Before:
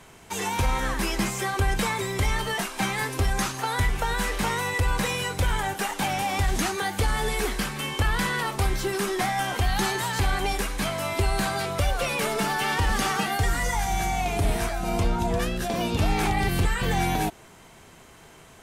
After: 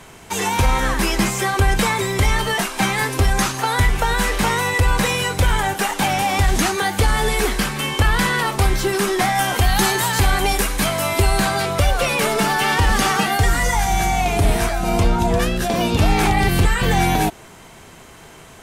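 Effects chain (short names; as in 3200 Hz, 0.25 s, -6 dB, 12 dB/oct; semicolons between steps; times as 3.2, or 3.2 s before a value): 9.35–11.38 high shelf 9400 Hz +8 dB; gain +7.5 dB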